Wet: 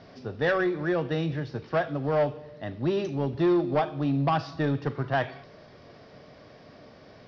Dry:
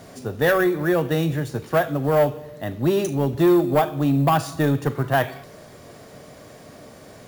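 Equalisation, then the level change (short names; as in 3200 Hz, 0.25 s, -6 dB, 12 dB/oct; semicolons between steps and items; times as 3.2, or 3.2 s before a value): elliptic low-pass 5300 Hz, stop band 40 dB; -5.5 dB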